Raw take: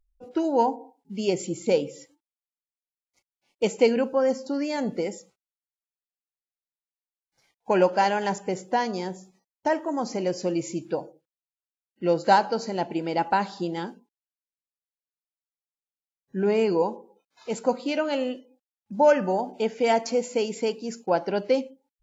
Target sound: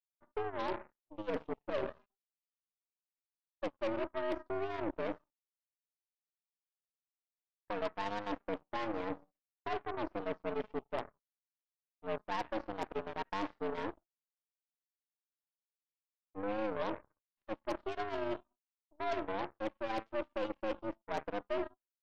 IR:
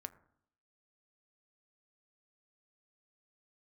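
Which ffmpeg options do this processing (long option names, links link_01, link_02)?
-af "highpass=frequency=160:width_type=q:width=0.5412,highpass=frequency=160:width_type=q:width=1.307,lowpass=frequency=3300:width_type=q:width=0.5176,lowpass=frequency=3300:width_type=q:width=0.7071,lowpass=frequency=3300:width_type=q:width=1.932,afreqshift=100,adynamicequalizer=threshold=0.0126:dfrequency=440:dqfactor=3.1:tfrequency=440:tqfactor=3.1:attack=5:release=100:ratio=0.375:range=1.5:mode=cutabove:tftype=bell,areverse,acompressor=threshold=-35dB:ratio=6,areverse,tiltshelf=frequency=1400:gain=4.5,aeval=exprs='0.0708*(cos(1*acos(clip(val(0)/0.0708,-1,1)))-cos(1*PI/2))+0.0126*(cos(4*acos(clip(val(0)/0.0708,-1,1)))-cos(4*PI/2))+0.01*(cos(7*acos(clip(val(0)/0.0708,-1,1)))-cos(7*PI/2))':channel_layout=same,volume=-4dB"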